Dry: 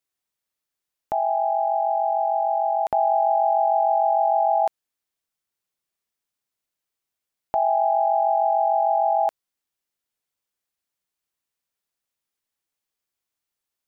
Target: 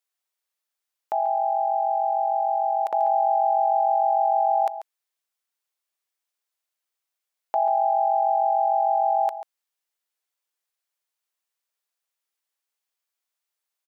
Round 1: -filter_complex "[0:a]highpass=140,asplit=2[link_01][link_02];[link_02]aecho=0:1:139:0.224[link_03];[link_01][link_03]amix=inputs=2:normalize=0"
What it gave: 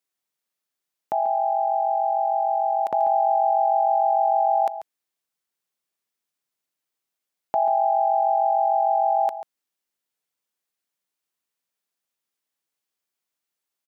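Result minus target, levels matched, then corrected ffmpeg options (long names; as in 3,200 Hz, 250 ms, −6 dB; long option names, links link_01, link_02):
125 Hz band +17.5 dB
-filter_complex "[0:a]highpass=520,asplit=2[link_01][link_02];[link_02]aecho=0:1:139:0.224[link_03];[link_01][link_03]amix=inputs=2:normalize=0"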